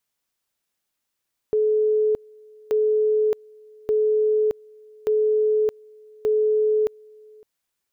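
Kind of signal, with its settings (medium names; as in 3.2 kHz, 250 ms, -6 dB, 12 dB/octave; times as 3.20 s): two-level tone 429 Hz -16.5 dBFS, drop 28 dB, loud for 0.62 s, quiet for 0.56 s, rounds 5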